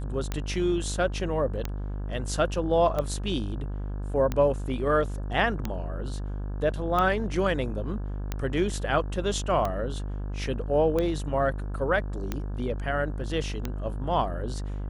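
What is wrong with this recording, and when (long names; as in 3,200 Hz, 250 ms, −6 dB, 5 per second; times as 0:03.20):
mains buzz 50 Hz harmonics 34 −32 dBFS
scratch tick 45 rpm −15 dBFS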